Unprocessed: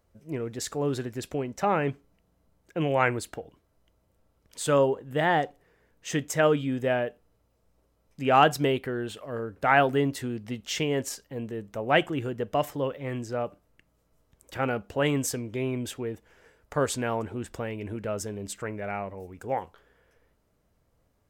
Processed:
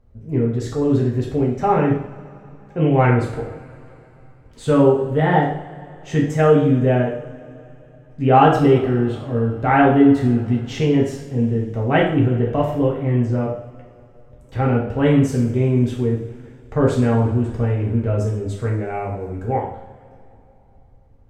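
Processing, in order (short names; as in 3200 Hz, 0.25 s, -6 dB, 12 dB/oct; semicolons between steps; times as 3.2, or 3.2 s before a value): RIAA curve playback; two-slope reverb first 0.59 s, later 3.4 s, from -21 dB, DRR -3.5 dB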